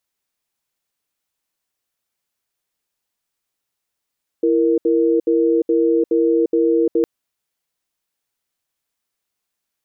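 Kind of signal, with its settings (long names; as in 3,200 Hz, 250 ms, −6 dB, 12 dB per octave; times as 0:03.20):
tone pair in a cadence 333 Hz, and 466 Hz, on 0.35 s, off 0.07 s, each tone −15.5 dBFS 2.61 s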